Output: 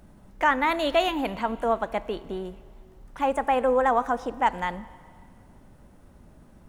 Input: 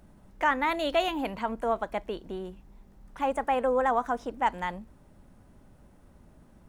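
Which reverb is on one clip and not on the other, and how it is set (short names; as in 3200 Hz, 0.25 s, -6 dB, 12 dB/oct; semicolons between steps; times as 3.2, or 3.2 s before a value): Schroeder reverb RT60 2.2 s, combs from 31 ms, DRR 17.5 dB; gain +3.5 dB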